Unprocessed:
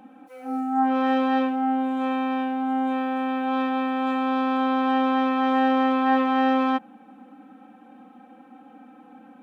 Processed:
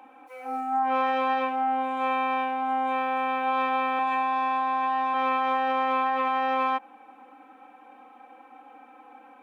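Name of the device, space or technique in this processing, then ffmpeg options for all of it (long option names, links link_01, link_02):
laptop speaker: -filter_complex "[0:a]asettb=1/sr,asplit=3[link_01][link_02][link_03];[link_01]atrim=end=3.974[link_04];[link_02]atrim=start=3.97:end=5.14,asetpts=PTS-STARTPTS,afade=type=in:duration=0.004:curve=qsin,afade=type=out:start_time=1.166:duration=0.004:curve=qsin,asplit=2[link_05][link_06];[link_06]adelay=18,volume=-3dB[link_07];[link_05][link_07]amix=inputs=2:normalize=0,atrim=end_sample=51597[link_08];[link_03]atrim=start=5.136[link_09];[link_04][link_08]acrossfade=duration=0.004:curve1=hsin:curve2=qsin[link_10];[link_10][link_09]acrossfade=duration=0.004:curve1=qsin:curve2=hsin,highpass=frequency=350:width=0.5412,highpass=frequency=350:width=1.3066,equalizer=frequency=990:width_type=o:width=0.5:gain=8.5,equalizer=frequency=2300:width_type=o:width=0.35:gain=8,alimiter=limit=-17.5dB:level=0:latency=1:release=81,volume=-1dB"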